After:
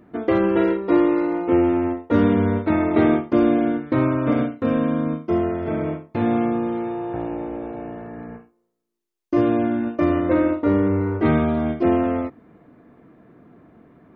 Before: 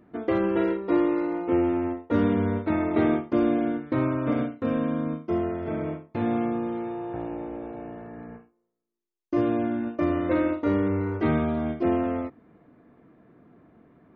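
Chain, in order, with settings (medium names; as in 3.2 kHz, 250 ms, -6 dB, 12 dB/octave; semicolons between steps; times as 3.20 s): 10.20–11.25 s: treble shelf 2.8 kHz -9.5 dB; trim +5.5 dB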